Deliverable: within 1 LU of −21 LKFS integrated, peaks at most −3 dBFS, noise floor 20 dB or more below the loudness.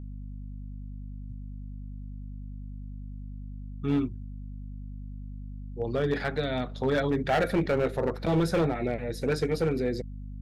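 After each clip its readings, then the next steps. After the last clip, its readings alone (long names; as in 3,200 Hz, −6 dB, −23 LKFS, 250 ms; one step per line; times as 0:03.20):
share of clipped samples 1.3%; peaks flattened at −19.5 dBFS; mains hum 50 Hz; hum harmonics up to 250 Hz; level of the hum −36 dBFS; integrated loudness −28.5 LKFS; sample peak −19.5 dBFS; target loudness −21.0 LKFS
→ clipped peaks rebuilt −19.5 dBFS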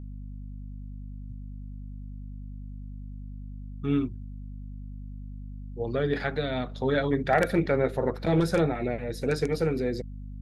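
share of clipped samples 0.0%; mains hum 50 Hz; hum harmonics up to 250 Hz; level of the hum −36 dBFS
→ hum removal 50 Hz, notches 5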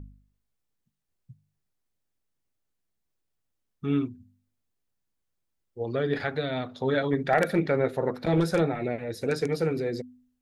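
mains hum none found; integrated loudness −28.0 LKFS; sample peak −10.5 dBFS; target loudness −21.0 LKFS
→ level +7 dB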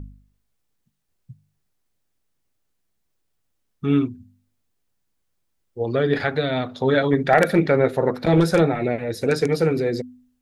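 integrated loudness −21.0 LKFS; sample peak −3.5 dBFS; background noise floor −72 dBFS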